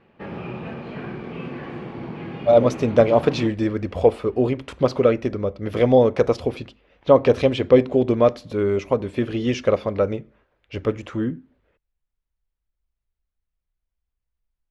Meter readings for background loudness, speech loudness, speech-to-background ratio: −33.5 LKFS, −20.5 LKFS, 13.0 dB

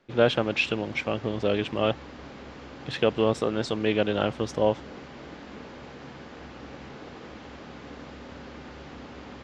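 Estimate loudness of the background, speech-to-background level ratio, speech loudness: −43.0 LKFS, 16.5 dB, −26.5 LKFS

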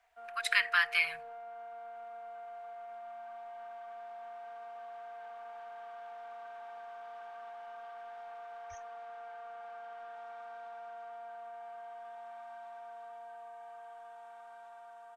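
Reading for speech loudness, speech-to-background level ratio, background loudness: −29.5 LKFS, 18.0 dB, −47.5 LKFS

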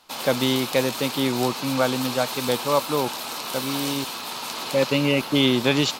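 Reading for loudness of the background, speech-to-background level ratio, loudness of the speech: −29.5 LKFS, 5.5 dB, −24.0 LKFS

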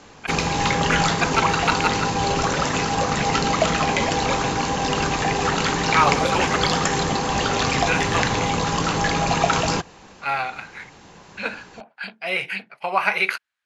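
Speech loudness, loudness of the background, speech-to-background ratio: −26.0 LKFS, −21.0 LKFS, −5.0 dB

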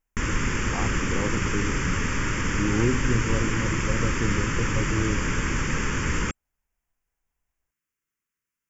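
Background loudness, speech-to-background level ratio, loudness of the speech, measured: −26.5 LKFS, −4.0 dB, −30.5 LKFS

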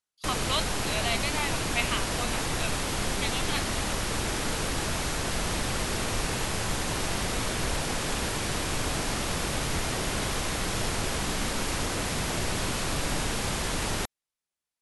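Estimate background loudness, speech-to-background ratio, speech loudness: −29.5 LKFS, −3.5 dB, −33.0 LKFS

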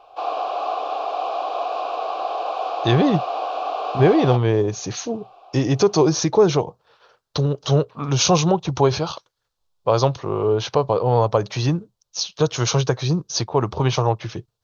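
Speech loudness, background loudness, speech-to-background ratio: −20.5 LKFS, −26.0 LKFS, 5.5 dB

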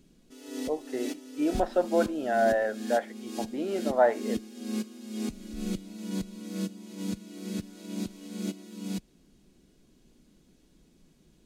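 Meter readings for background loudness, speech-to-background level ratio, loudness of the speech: −37.0 LKFS, 8.5 dB, −28.5 LKFS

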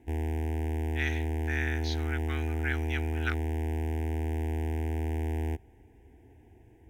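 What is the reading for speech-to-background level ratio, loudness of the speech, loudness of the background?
−5.0 dB, −37.5 LKFS, −32.5 LKFS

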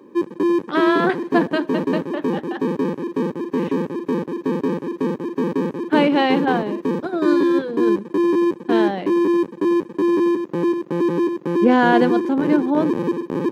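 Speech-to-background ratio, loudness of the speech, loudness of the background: 0.0 dB, −21.5 LKFS, −21.5 LKFS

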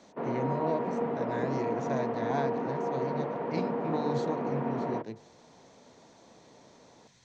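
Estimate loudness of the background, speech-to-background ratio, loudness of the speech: −32.5 LKFS, −4.0 dB, −36.5 LKFS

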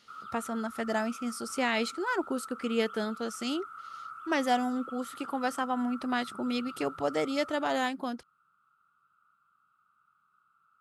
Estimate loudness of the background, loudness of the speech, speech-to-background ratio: −44.5 LKFS, −32.0 LKFS, 12.5 dB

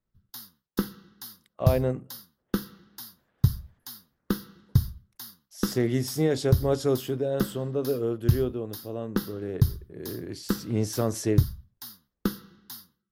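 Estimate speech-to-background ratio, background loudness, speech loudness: 1.0 dB, −30.0 LKFS, −29.0 LKFS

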